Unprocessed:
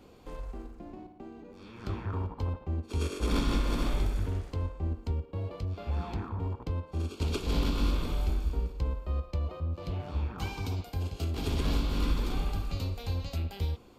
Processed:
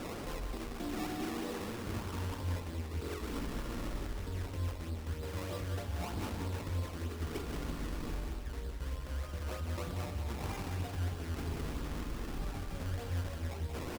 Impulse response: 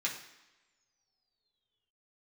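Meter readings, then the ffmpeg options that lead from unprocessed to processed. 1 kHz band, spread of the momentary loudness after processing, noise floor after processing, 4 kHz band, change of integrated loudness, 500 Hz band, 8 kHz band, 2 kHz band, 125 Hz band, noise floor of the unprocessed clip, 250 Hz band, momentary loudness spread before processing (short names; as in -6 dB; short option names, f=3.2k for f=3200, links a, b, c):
-3.0 dB, 4 LU, -43 dBFS, -6.0 dB, -6.0 dB, -3.5 dB, -0.5 dB, -1.0 dB, -6.0 dB, -52 dBFS, -4.5 dB, 13 LU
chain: -filter_complex "[0:a]aeval=exprs='val(0)+0.5*0.01*sgn(val(0))':c=same,lowpass=f=2.6k:p=1,bandreject=f=50:t=h:w=6,bandreject=f=100:t=h:w=6,areverse,acompressor=threshold=-39dB:ratio=6,areverse,asplit=2[a][b];[b]adelay=45,volume=-11dB[c];[a][c]amix=inputs=2:normalize=0,acrusher=samples=20:mix=1:aa=0.000001:lfo=1:lforange=20:lforate=3.2,aecho=1:1:183:0.501,asplit=2[d][e];[1:a]atrim=start_sample=2205,asetrate=30429,aresample=44100[f];[e][f]afir=irnorm=-1:irlink=0,volume=-15.5dB[g];[d][g]amix=inputs=2:normalize=0,volume=2.5dB"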